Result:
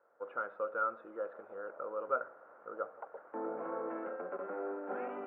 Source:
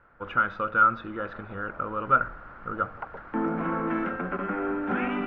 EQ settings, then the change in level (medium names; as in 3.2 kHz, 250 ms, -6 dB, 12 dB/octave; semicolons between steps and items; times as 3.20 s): ladder band-pass 600 Hz, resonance 50%; +2.5 dB